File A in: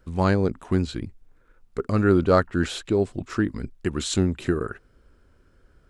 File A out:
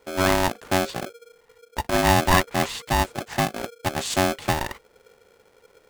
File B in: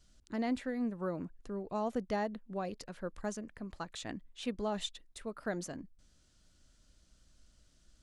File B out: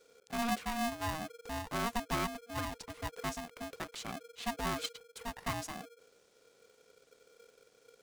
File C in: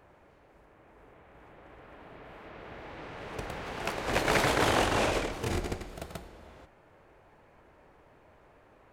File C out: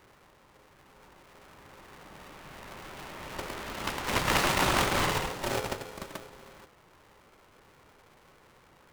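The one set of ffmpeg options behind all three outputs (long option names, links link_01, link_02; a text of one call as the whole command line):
ffmpeg -i in.wav -af "aeval=exprs='val(0)*sgn(sin(2*PI*470*n/s))':channel_layout=same" out.wav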